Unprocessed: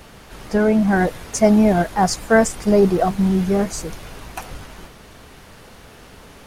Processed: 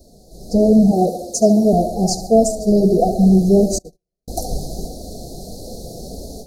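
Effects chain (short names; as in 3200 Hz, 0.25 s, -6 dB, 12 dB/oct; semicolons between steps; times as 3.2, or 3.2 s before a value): 0.91–1.73 HPF 240 Hz 6 dB/oct; on a send: tape echo 70 ms, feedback 73%, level -9 dB, low-pass 4300 Hz; 3.78–4.28 on the sum: gate -23 dBFS, range -56 dB; flange 1.6 Hz, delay 3 ms, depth 3.3 ms, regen -27%; AGC gain up to 16 dB; Chebyshev band-stop 730–4100 Hz, order 5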